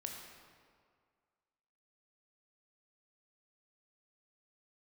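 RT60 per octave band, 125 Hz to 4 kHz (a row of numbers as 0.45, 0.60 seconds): 1.8, 1.9, 2.0, 2.0, 1.6, 1.3 seconds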